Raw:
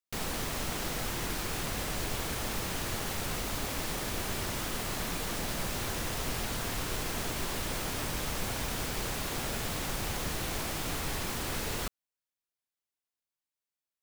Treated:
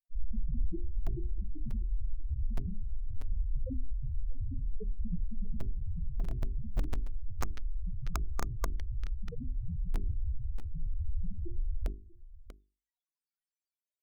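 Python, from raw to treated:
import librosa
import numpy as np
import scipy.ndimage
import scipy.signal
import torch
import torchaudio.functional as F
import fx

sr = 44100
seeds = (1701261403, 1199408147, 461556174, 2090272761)

p1 = fx.spec_topn(x, sr, count=1)
p2 = fx.quant_companded(p1, sr, bits=2)
p3 = p1 + (p2 * librosa.db_to_amplitude(-9.0))
p4 = fx.peak_eq(p3, sr, hz=120.0, db=-5.5, octaves=0.85)
p5 = fx.hum_notches(p4, sr, base_hz=50, count=8)
p6 = p5 + 10.0 ** (-19.0 / 20.0) * np.pad(p5, (int(641 * sr / 1000.0), 0))[:len(p5)]
p7 = fx.spec_box(p6, sr, start_s=7.41, length_s=2.04, low_hz=1200.0, high_hz=6500.0, gain_db=12)
p8 = fx.notch(p7, sr, hz=660.0, q=12.0)
p9 = fx.fold_sine(p8, sr, drive_db=10, ceiling_db=-24.5)
p10 = fx.rider(p9, sr, range_db=10, speed_s=2.0)
y = p10 * librosa.db_to_amplitude(3.0)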